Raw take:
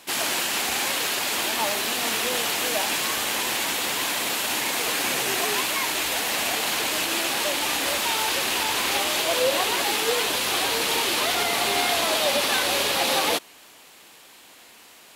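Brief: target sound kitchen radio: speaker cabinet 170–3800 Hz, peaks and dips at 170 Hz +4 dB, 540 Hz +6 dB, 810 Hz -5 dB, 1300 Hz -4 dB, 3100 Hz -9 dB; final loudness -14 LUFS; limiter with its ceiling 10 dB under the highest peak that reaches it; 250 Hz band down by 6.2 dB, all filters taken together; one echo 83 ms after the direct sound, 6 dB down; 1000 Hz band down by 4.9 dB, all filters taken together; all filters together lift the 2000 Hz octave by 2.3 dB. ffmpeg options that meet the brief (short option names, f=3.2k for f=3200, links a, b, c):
-af "equalizer=f=250:t=o:g=-8.5,equalizer=f=1k:t=o:g=-3.5,equalizer=f=2k:t=o:g=6,alimiter=limit=-19dB:level=0:latency=1,highpass=170,equalizer=f=170:t=q:w=4:g=4,equalizer=f=540:t=q:w=4:g=6,equalizer=f=810:t=q:w=4:g=-5,equalizer=f=1.3k:t=q:w=4:g=-4,equalizer=f=3.1k:t=q:w=4:g=-9,lowpass=f=3.8k:w=0.5412,lowpass=f=3.8k:w=1.3066,aecho=1:1:83:0.501,volume=15dB"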